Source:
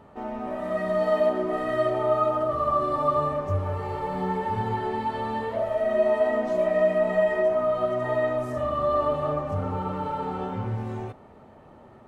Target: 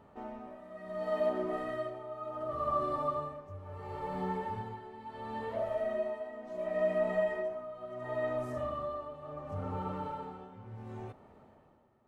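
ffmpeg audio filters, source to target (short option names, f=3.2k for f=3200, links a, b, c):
-af "tremolo=f=0.71:d=0.77,volume=-7.5dB"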